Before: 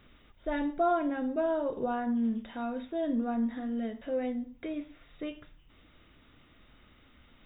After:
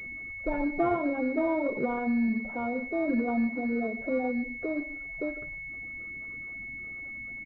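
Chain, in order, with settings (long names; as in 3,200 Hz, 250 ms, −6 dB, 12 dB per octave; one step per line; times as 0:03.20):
spectral magnitudes quantised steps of 30 dB
in parallel at +2 dB: downward compressor, threshold −37 dBFS, peak gain reduction 13 dB
on the sum: single-tap delay 152 ms −19 dB
switching amplifier with a slow clock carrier 2,200 Hz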